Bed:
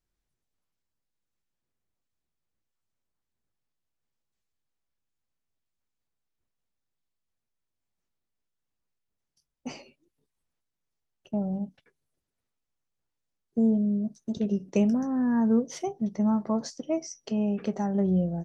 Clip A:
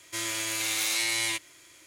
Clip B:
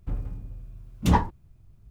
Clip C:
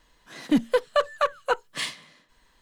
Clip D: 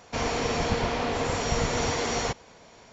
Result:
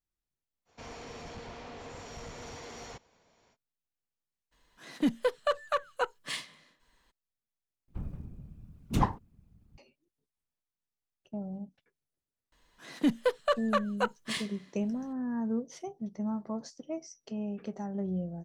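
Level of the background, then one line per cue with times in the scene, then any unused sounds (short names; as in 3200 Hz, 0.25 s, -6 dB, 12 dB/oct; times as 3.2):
bed -9 dB
0.65 add D -16 dB, fades 0.05 s + soft clip -21.5 dBFS
4.51 add C -6.5 dB, fades 0.02 s
7.88 replace with B -7 dB + whisperiser
12.52 add C -5.5 dB
not used: A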